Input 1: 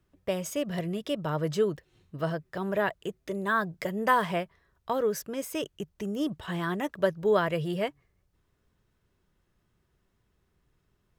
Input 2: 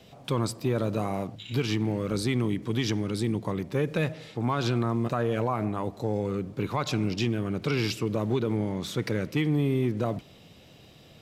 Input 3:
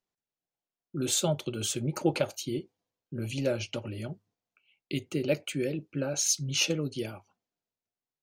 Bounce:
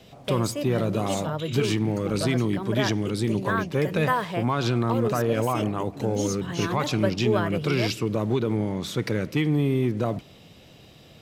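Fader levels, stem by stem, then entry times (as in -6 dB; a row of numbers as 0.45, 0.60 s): -1.0, +2.5, -9.0 dB; 0.00, 0.00, 0.00 s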